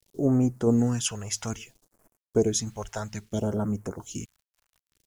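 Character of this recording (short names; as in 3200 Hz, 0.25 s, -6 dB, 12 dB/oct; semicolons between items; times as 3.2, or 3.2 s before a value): a quantiser's noise floor 10-bit, dither none; tremolo saw down 1.5 Hz, depth 35%; phasing stages 2, 0.6 Hz, lowest notch 250–3600 Hz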